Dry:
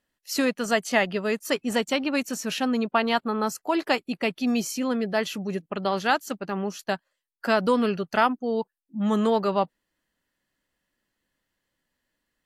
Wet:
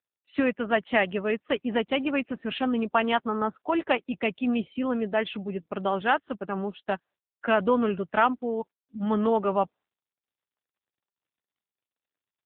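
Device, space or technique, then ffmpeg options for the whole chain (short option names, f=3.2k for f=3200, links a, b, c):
mobile call with aggressive noise cancelling: -af "highpass=f=130:p=1,afftdn=nr=22:nf=-47" -ar 8000 -c:a libopencore_amrnb -b:a 7950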